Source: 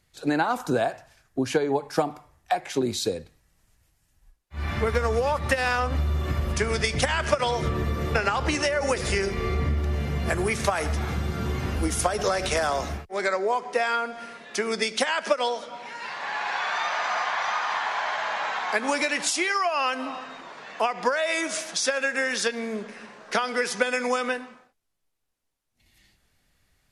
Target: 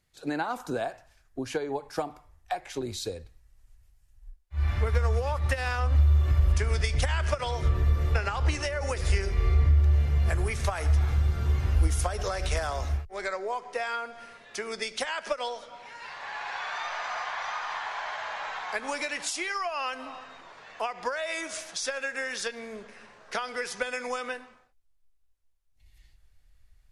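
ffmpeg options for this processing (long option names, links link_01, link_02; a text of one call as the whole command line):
ffmpeg -i in.wav -af "asubboost=boost=12:cutoff=59,volume=-6.5dB" out.wav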